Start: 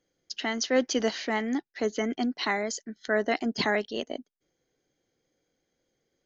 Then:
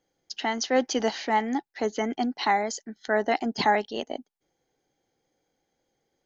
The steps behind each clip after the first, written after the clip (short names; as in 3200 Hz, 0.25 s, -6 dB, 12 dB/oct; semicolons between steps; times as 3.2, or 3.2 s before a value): bell 830 Hz +11.5 dB 0.35 oct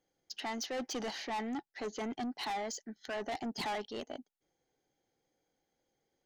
soft clip -28 dBFS, distortion -6 dB; gain -5.5 dB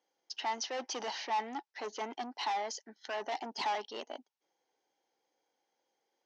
speaker cabinet 380–6100 Hz, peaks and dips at 940 Hz +9 dB, 2800 Hz +3 dB, 5700 Hz +6 dB